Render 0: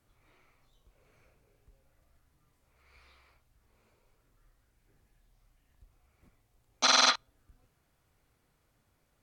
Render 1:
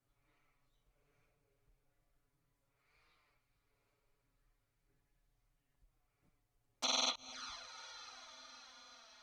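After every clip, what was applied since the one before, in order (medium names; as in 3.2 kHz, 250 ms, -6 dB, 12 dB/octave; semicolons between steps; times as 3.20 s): echo that smears into a reverb 463 ms, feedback 70%, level -13.5 dB; touch-sensitive flanger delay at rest 7.5 ms, full sweep at -29.5 dBFS; trim -8.5 dB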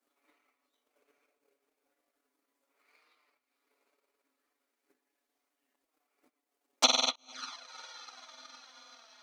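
elliptic high-pass 250 Hz; transient shaper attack +12 dB, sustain -10 dB; trim +4.5 dB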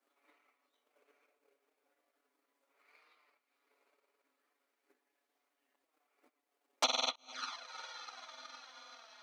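compression 2.5:1, threshold -31 dBFS, peak gain reduction 9 dB; tone controls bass -11 dB, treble -6 dB; trim +2 dB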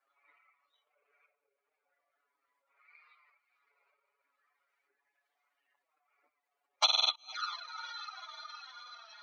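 spectral contrast enhancement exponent 1.9; high-pass 1.1 kHz 12 dB/octave; trim +6.5 dB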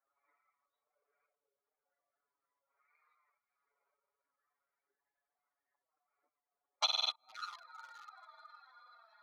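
local Wiener filter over 15 samples; trim -5.5 dB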